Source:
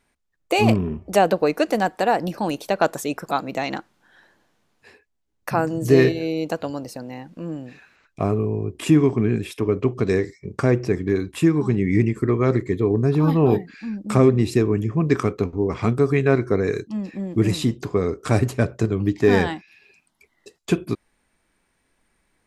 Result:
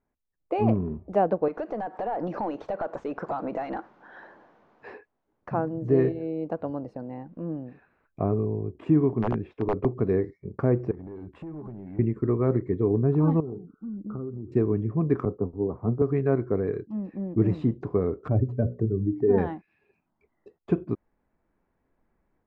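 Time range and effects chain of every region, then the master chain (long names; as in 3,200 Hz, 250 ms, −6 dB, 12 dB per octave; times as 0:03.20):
0:01.48–0:05.49: parametric band 6,400 Hz +14 dB 1.5 octaves + downward compressor 5 to 1, threshold −33 dBFS + mid-hump overdrive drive 25 dB, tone 1,700 Hz, clips at −14 dBFS
0:09.22–0:09.85: running median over 5 samples + wrap-around overflow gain 11 dB
0:10.91–0:11.99: downward compressor 20 to 1, threshold −28 dBFS + gain into a clipping stage and back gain 30.5 dB
0:13.40–0:14.52: flat-topped bell 750 Hz −12 dB 1.1 octaves + downward compressor 5 to 1, threshold −29 dBFS + linear-phase brick-wall low-pass 1,500 Hz
0:15.25–0:16.02: low-pass filter 1,100 Hz 24 dB per octave + multiband upward and downward expander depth 100%
0:18.28–0:19.38: expanding power law on the bin magnitudes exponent 1.8 + dynamic equaliser 860 Hz, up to +3 dB, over −33 dBFS, Q 0.83 + mains-hum notches 60/120/180/240/300/360/420/480/540 Hz
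whole clip: low-pass filter 1,000 Hz 12 dB per octave; automatic gain control gain up to 6.5 dB; level −8.5 dB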